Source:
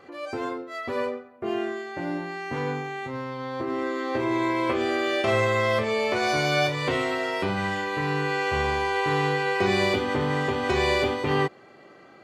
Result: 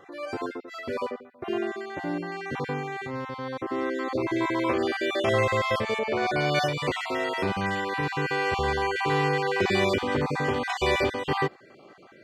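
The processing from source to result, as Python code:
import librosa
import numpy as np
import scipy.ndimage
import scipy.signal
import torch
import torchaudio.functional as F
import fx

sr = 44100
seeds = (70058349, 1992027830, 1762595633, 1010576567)

y = fx.spec_dropout(x, sr, seeds[0], share_pct=21)
y = fx.lowpass(y, sr, hz=fx.line((5.98, 1600.0), (6.54, 3300.0)), slope=6, at=(5.98, 6.54), fade=0.02)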